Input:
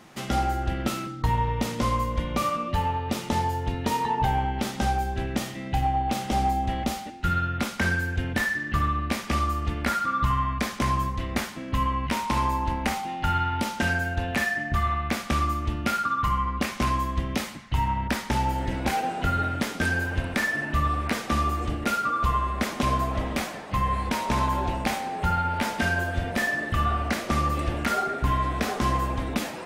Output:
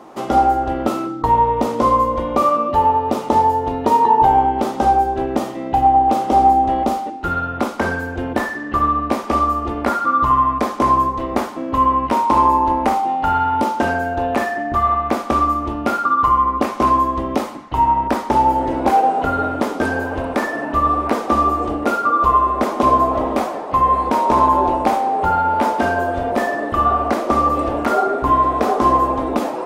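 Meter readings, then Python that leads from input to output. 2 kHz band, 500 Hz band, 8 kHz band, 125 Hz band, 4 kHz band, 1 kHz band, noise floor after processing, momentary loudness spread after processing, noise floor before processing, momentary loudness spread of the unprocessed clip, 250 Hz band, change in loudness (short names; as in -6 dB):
+1.5 dB, +13.5 dB, n/a, -1.5 dB, -1.5 dB, +12.5 dB, -28 dBFS, 7 LU, -37 dBFS, 4 LU, +8.0 dB, +9.5 dB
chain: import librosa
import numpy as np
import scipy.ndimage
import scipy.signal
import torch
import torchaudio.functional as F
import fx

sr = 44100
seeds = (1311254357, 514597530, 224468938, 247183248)

y = fx.band_shelf(x, sr, hz=560.0, db=15.0, octaves=2.6)
y = fx.hum_notches(y, sr, base_hz=50, count=7)
y = y * 10.0 ** (-1.5 / 20.0)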